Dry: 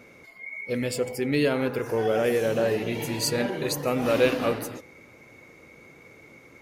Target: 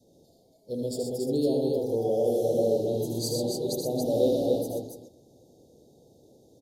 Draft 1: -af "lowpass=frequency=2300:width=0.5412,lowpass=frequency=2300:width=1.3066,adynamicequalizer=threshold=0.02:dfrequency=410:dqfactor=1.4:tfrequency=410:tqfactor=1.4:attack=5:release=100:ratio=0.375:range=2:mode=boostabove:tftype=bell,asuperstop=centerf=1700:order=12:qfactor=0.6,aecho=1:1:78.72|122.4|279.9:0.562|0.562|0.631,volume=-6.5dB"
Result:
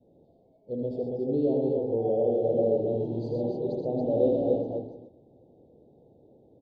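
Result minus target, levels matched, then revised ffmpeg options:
2,000 Hz band −6.5 dB
-af "adynamicequalizer=threshold=0.02:dfrequency=410:dqfactor=1.4:tfrequency=410:tqfactor=1.4:attack=5:release=100:ratio=0.375:range=2:mode=boostabove:tftype=bell,asuperstop=centerf=1700:order=12:qfactor=0.6,aecho=1:1:78.72|122.4|279.9:0.562|0.562|0.631,volume=-6.5dB"

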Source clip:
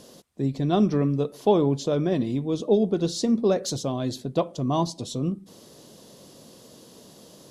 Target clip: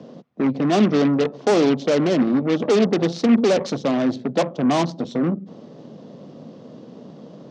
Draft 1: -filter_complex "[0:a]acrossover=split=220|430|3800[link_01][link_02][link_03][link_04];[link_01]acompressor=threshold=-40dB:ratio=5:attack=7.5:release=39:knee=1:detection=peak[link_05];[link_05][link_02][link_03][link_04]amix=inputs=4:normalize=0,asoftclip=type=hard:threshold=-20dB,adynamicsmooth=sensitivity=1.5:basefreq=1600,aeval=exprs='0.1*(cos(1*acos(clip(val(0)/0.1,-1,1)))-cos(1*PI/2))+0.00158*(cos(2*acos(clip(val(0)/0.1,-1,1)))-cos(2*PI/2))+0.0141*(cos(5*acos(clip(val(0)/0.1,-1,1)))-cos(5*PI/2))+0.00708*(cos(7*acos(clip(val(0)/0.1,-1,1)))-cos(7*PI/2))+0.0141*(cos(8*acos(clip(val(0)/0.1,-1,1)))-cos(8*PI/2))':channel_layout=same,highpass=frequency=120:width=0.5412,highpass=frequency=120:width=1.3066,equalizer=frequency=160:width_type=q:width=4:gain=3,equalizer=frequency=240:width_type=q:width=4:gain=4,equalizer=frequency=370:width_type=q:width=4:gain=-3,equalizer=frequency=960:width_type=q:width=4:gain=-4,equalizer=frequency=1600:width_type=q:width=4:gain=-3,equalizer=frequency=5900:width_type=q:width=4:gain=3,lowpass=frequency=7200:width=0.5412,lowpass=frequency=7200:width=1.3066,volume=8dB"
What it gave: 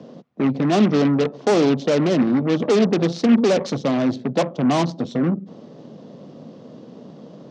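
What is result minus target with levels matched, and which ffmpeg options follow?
downward compressor: peak gain reduction −6 dB
-filter_complex "[0:a]acrossover=split=220|430|3800[link_01][link_02][link_03][link_04];[link_01]acompressor=threshold=-47.5dB:ratio=5:attack=7.5:release=39:knee=1:detection=peak[link_05];[link_05][link_02][link_03][link_04]amix=inputs=4:normalize=0,asoftclip=type=hard:threshold=-20dB,adynamicsmooth=sensitivity=1.5:basefreq=1600,aeval=exprs='0.1*(cos(1*acos(clip(val(0)/0.1,-1,1)))-cos(1*PI/2))+0.00158*(cos(2*acos(clip(val(0)/0.1,-1,1)))-cos(2*PI/2))+0.0141*(cos(5*acos(clip(val(0)/0.1,-1,1)))-cos(5*PI/2))+0.00708*(cos(7*acos(clip(val(0)/0.1,-1,1)))-cos(7*PI/2))+0.0141*(cos(8*acos(clip(val(0)/0.1,-1,1)))-cos(8*PI/2))':channel_layout=same,highpass=frequency=120:width=0.5412,highpass=frequency=120:width=1.3066,equalizer=frequency=160:width_type=q:width=4:gain=3,equalizer=frequency=240:width_type=q:width=4:gain=4,equalizer=frequency=370:width_type=q:width=4:gain=-3,equalizer=frequency=960:width_type=q:width=4:gain=-4,equalizer=frequency=1600:width_type=q:width=4:gain=-3,equalizer=frequency=5900:width_type=q:width=4:gain=3,lowpass=frequency=7200:width=0.5412,lowpass=frequency=7200:width=1.3066,volume=8dB"

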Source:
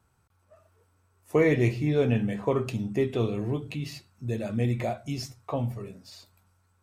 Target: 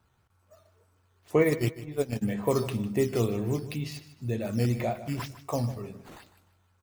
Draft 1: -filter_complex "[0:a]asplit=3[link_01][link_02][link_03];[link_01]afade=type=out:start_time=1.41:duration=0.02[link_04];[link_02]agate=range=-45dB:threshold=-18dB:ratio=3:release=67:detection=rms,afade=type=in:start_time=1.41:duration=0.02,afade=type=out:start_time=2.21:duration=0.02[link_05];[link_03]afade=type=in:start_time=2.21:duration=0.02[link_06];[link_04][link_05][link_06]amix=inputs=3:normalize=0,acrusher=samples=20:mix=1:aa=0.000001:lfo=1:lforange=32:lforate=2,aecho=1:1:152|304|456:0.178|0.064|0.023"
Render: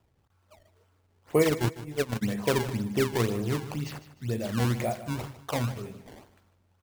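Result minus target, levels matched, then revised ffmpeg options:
sample-and-hold swept by an LFO: distortion +10 dB
-filter_complex "[0:a]asplit=3[link_01][link_02][link_03];[link_01]afade=type=out:start_time=1.41:duration=0.02[link_04];[link_02]agate=range=-45dB:threshold=-18dB:ratio=3:release=67:detection=rms,afade=type=in:start_time=1.41:duration=0.02,afade=type=out:start_time=2.21:duration=0.02[link_05];[link_03]afade=type=in:start_time=2.21:duration=0.02[link_06];[link_04][link_05][link_06]amix=inputs=3:normalize=0,acrusher=samples=5:mix=1:aa=0.000001:lfo=1:lforange=8:lforate=2,aecho=1:1:152|304|456:0.178|0.064|0.023"

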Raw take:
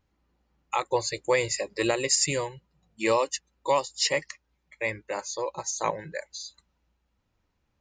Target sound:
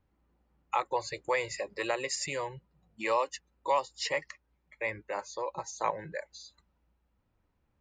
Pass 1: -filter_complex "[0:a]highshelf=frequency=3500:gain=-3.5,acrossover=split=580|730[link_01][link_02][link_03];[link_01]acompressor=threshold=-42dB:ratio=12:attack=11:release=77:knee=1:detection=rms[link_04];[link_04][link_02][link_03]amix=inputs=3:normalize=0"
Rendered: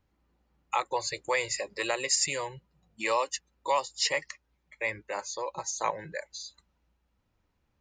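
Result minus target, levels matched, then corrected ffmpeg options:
8,000 Hz band +6.5 dB
-filter_complex "[0:a]highshelf=frequency=3500:gain=-15,acrossover=split=580|730[link_01][link_02][link_03];[link_01]acompressor=threshold=-42dB:ratio=12:attack=11:release=77:knee=1:detection=rms[link_04];[link_04][link_02][link_03]amix=inputs=3:normalize=0"

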